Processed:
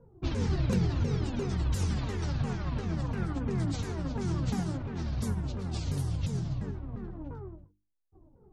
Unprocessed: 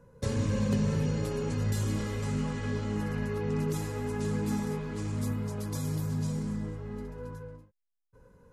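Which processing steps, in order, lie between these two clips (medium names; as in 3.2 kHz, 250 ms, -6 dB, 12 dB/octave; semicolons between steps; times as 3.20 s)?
sawtooth pitch modulation -11 st, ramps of 348 ms; hum notches 50/100/150/200/250/300/350 Hz; level-controlled noise filter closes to 680 Hz, open at -28 dBFS; trim +1.5 dB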